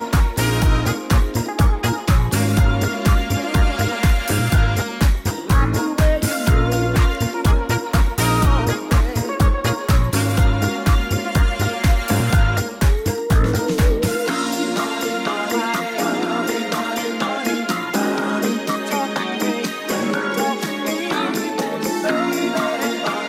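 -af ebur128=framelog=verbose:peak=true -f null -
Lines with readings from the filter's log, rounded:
Integrated loudness:
  I:         -19.3 LUFS
  Threshold: -29.3 LUFS
Loudness range:
  LRA:         3.1 LU
  Threshold: -39.3 LUFS
  LRA low:   -21.3 LUFS
  LRA high:  -18.2 LUFS
True peak:
  Peak:       -5.7 dBFS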